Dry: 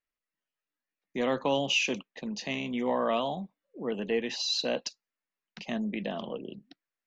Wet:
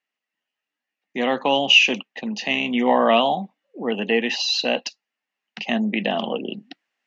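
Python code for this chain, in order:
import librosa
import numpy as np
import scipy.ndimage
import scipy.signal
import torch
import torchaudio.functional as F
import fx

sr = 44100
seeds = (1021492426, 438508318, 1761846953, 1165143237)

y = fx.rider(x, sr, range_db=10, speed_s=2.0)
y = fx.cabinet(y, sr, low_hz=190.0, low_slope=12, high_hz=6800.0, hz=(230.0, 780.0, 1900.0, 2800.0), db=(5, 8, 6, 9))
y = y * librosa.db_to_amplitude(6.0)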